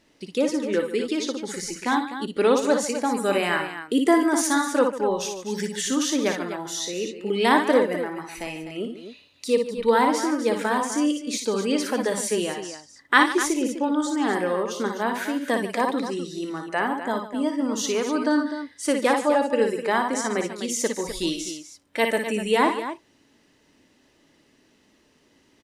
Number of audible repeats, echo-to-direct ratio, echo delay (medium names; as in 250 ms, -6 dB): 3, -3.5 dB, 57 ms